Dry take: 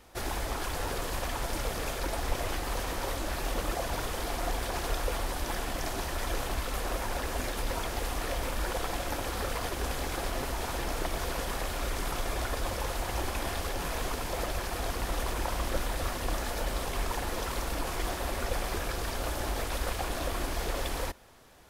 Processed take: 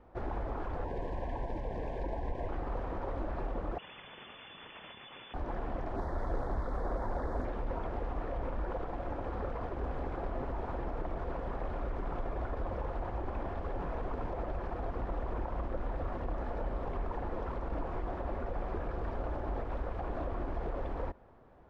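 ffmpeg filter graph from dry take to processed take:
ffmpeg -i in.wav -filter_complex "[0:a]asettb=1/sr,asplit=3[link_01][link_02][link_03];[link_01]atrim=end=0.844[link_04];[link_02]atrim=start=0.84:end=2.49,asetpts=PTS-STARTPTS,afade=type=in:duration=0.004:curve=qsin,afade=type=out:start_time=1.646:duration=0.004:curve=qsin,highshelf=frequency=7400:gain=12,adynamicsmooth=sensitivity=6.5:basefreq=7500,asuperstop=centerf=1300:order=8:qfactor=2.7[link_05];[link_03]atrim=start=2.486[link_06];[link_04][link_05]acrossfade=duration=0.004:curve1=hsin:curve2=qsin[link_07];[link_07][link_06]acrossfade=duration=0.004:curve1=qsin:curve2=hsin,asettb=1/sr,asplit=3[link_08][link_09][link_10];[link_08]atrim=end=3.784[link_11];[link_09]atrim=start=3.78:end=5.34,asetpts=PTS-STARTPTS,afade=type=in:duration=0.004:curve=qsin,afade=type=out:start_time=1.556:duration=0.004:curve=qsin,adynamicsmooth=sensitivity=6.5:basefreq=2000,lowpass=frequency=3000:width_type=q:width=0.5098,lowpass=frequency=3000:width_type=q:width=0.6013,lowpass=frequency=3000:width_type=q:width=0.9,lowpass=frequency=3000:width_type=q:width=2.563,afreqshift=-3500,equalizer=frequency=160:width=0.51:gain=6.5[link_12];[link_10]atrim=start=5.336[link_13];[link_11][link_12]acrossfade=duration=0.004:curve1=hsin:curve2=qsin[link_14];[link_14][link_13]acrossfade=duration=0.004:curve1=qsin:curve2=hsin,asettb=1/sr,asplit=3[link_15][link_16][link_17];[link_15]atrim=end=5.964[link_18];[link_16]atrim=start=5.96:end=7.45,asetpts=PTS-STARTPTS,afade=type=in:duration=0.004:curve=qsin,afade=type=out:start_time=1.486:duration=0.004:curve=qsin,asuperstop=centerf=2700:order=4:qfactor=1.7,highshelf=frequency=7700:gain=11.5,aeval=exprs='0.0562*(abs(mod(val(0)/0.0562+3,4)-2)-1)':channel_layout=same[link_19];[link_17]atrim=start=7.446[link_20];[link_18][link_19]acrossfade=duration=0.004:curve1=hsin:curve2=qsin[link_21];[link_21][link_20]acrossfade=duration=0.004:curve1=qsin:curve2=hsin,alimiter=level_in=1dB:limit=-24dB:level=0:latency=1:release=79,volume=-1dB,lowpass=1000" out.wav

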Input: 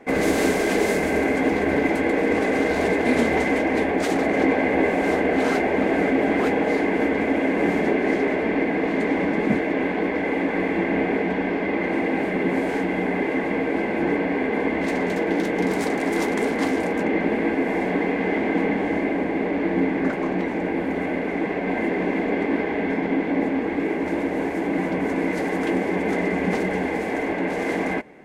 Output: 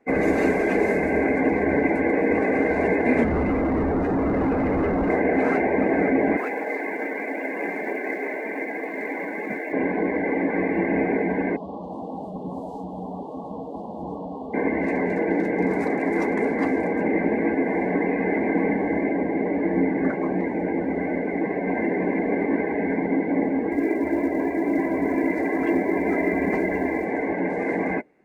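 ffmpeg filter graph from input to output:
ffmpeg -i in.wav -filter_complex "[0:a]asettb=1/sr,asplit=3[link_01][link_02][link_03];[link_01]atrim=end=3.244[link_04];[link_02]atrim=start=3.24:end=5.1,asetpts=PTS-STARTPTS,afade=type=in:duration=0.004:curve=qsin,afade=type=out:start_time=1.856:duration=0.004:curve=qsin,aemphasis=mode=reproduction:type=riaa,volume=20dB,asoftclip=hard,volume=-20dB[link_05];[link_03]atrim=start=5.096[link_06];[link_04][link_05]acrossfade=duration=0.004:curve1=hsin:curve2=qsin[link_07];[link_07][link_06]acrossfade=duration=0.004:curve1=qsin:curve2=hsin,asettb=1/sr,asplit=3[link_08][link_09][link_10];[link_08]atrim=end=6.374[link_11];[link_09]atrim=start=6.37:end=9.73,asetpts=PTS-STARTPTS,afade=type=in:duration=0.004:curve=qsin,afade=type=out:start_time=3.356:duration=0.004:curve=qsin,highpass=frequency=900:poles=1,acrusher=bits=4:mode=log:mix=0:aa=0.000001[link_12];[link_10]atrim=start=9.726[link_13];[link_11][link_12]acrossfade=duration=0.004:curve1=hsin:curve2=qsin[link_14];[link_14][link_13]acrossfade=duration=0.004:curve1=qsin:curve2=hsin,asettb=1/sr,asplit=3[link_15][link_16][link_17];[link_15]atrim=end=11.564[link_18];[link_16]atrim=start=11.56:end=14.54,asetpts=PTS-STARTPTS,afade=type=in:duration=0.004:curve=qsin,afade=type=out:start_time=2.976:duration=0.004:curve=qsin,asuperstop=centerf=1900:order=20:qfactor=1.1,equalizer=frequency=350:width_type=o:width=1.3:gain=-14.5[link_19];[link_17]atrim=start=14.536[link_20];[link_18][link_19]acrossfade=duration=0.004:curve1=hsin:curve2=qsin[link_21];[link_21][link_20]acrossfade=duration=0.004:curve1=qsin:curve2=hsin,asettb=1/sr,asplit=3[link_22][link_23][link_24];[link_22]atrim=end=23.714[link_25];[link_23]atrim=start=23.71:end=27.05,asetpts=PTS-STARTPTS,afade=type=in:duration=0.004:curve=qsin,afade=type=out:start_time=3.336:duration=0.004:curve=qsin,bandreject=frequency=60:width_type=h:width=6,bandreject=frequency=120:width_type=h:width=6,bandreject=frequency=180:width_type=h:width=6,bandreject=frequency=240:width_type=h:width=6,aecho=1:1:3:0.38,atrim=end_sample=147294,acrusher=bits=5:mode=log:mix=0:aa=0.000001[link_26];[link_24]atrim=start=27.046[link_27];[link_25][link_26]acrossfade=duration=0.004:curve1=hsin:curve2=qsin[link_28];[link_28][link_27]acrossfade=duration=0.004:curve1=qsin:curve2=hsin,afftdn=noise_reduction=16:noise_floor=-30,equalizer=frequency=3200:width_type=o:width=0.22:gain=-9" out.wav

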